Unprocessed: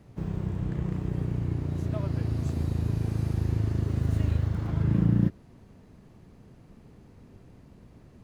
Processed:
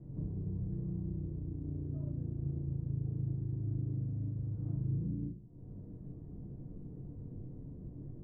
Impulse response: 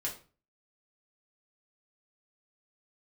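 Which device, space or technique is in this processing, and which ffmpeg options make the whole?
television next door: -filter_complex "[0:a]acompressor=threshold=-43dB:ratio=4,lowpass=340[a];[1:a]atrim=start_sample=2205[b];[a][b]afir=irnorm=-1:irlink=0,volume=4.5dB"

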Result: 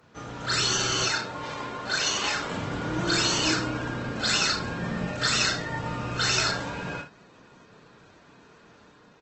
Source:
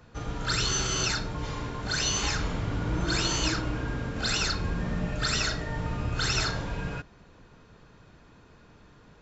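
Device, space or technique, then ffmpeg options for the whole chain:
video call: -filter_complex "[0:a]highpass=f=130:p=1,asettb=1/sr,asplit=3[a][b][c];[a]atrim=end=1.044[d];[b]atrim=start=1.04:end=2.51,asetpts=PTS-STARTPTS,afade=t=in:d=0.004:c=qsin,afade=t=out:st=1.466:d=0.004:c=qsin,bass=f=250:g=-8,treble=f=4k:g=-5[e];[c]atrim=start=2.506[f];[d][e]acrossfade=d=0.004:c1=hsin:c2=qsin[g];[g][f]acrossfade=d=0.004:c1=qsin:c2=hsin,highpass=f=150:p=1,aecho=1:1:32|73:0.501|0.266,dynaudnorm=f=140:g=7:m=3dB" -ar 48000 -c:a libopus -b:a 16k

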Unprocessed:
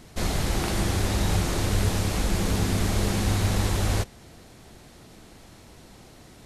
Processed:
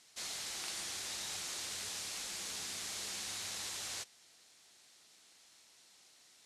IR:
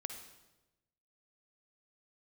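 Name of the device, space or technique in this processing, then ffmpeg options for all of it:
piezo pickup straight into a mixer: -af "lowpass=6.8k,aderivative,volume=-1.5dB"

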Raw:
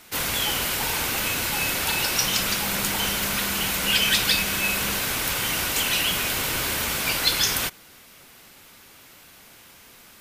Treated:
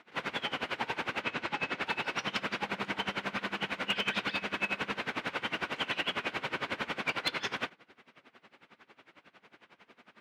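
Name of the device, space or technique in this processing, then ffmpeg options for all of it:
helicopter radio: -filter_complex "[0:a]asettb=1/sr,asplit=3[a][b][c];[a]atrim=end=1.224[d];[b]atrim=start=1.22:end=1.81,asetpts=PTS-STARTPTS,afade=t=in:d=0.004:c=qsin,afade=t=out:st=0.586:d=0.004:c=qsin,lowpass=7.9k[e];[c]atrim=start=1.806[f];[d][e]acrossfade=d=0.004:c1=hsin:c2=qsin[g];[g][f]acrossfade=d=0.004:c1=qsin:c2=hsin,highpass=300,lowpass=2.8k,bass=f=250:g=8,treble=f=4k:g=-7,aeval=exprs='val(0)*pow(10,-21*(0.5-0.5*cos(2*PI*11*n/s))/20)':c=same,asoftclip=type=hard:threshold=-22dB"

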